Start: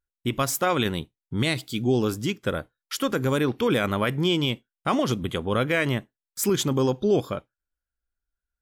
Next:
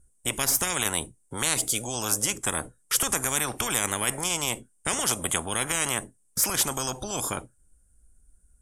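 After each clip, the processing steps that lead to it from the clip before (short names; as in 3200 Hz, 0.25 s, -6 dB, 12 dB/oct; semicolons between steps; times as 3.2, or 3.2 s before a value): EQ curve 200 Hz 0 dB, 1200 Hz -18 dB, 4300 Hz -26 dB, 9200 Hz +8 dB, 15000 Hz -26 dB; spectral compressor 10:1; gain +7 dB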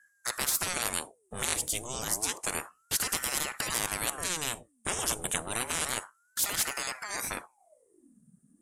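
ring modulator with a swept carrier 920 Hz, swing 80%, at 0.3 Hz; gain -2 dB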